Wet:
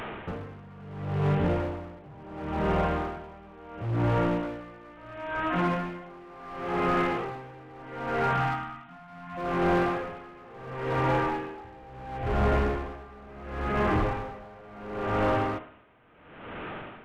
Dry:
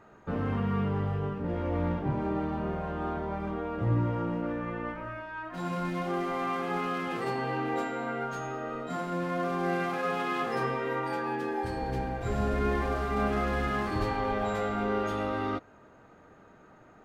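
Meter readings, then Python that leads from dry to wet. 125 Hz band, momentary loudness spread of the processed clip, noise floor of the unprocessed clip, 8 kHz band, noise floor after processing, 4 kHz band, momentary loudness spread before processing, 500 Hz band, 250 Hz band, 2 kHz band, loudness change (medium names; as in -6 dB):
+1.5 dB, 20 LU, -56 dBFS, no reading, -49 dBFS, +1.0 dB, 6 LU, +1.5 dB, 0.0 dB, +1.5 dB, +2.0 dB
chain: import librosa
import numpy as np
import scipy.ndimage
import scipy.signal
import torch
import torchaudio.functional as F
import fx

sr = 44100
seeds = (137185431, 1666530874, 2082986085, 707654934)

p1 = fx.delta_mod(x, sr, bps=16000, step_db=-42.5)
p2 = fx.spec_erase(p1, sr, start_s=8.33, length_s=1.04, low_hz=320.0, high_hz=660.0)
p3 = fx.dynamic_eq(p2, sr, hz=250.0, q=2.3, threshold_db=-48.0, ratio=4.0, max_db=-5)
p4 = fx.rider(p3, sr, range_db=4, speed_s=0.5)
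p5 = p3 + F.gain(torch.from_numpy(p4), 0.0).numpy()
p6 = fx.rev_spring(p5, sr, rt60_s=1.3, pass_ms=(54,), chirp_ms=50, drr_db=8.5)
p7 = np.clip(10.0 ** (24.0 / 20.0) * p6, -1.0, 1.0) / 10.0 ** (24.0 / 20.0)
p8 = p7 * 10.0 ** (-24 * (0.5 - 0.5 * np.cos(2.0 * np.pi * 0.72 * np.arange(len(p7)) / sr)) / 20.0)
y = F.gain(torch.from_numpy(p8), 4.5).numpy()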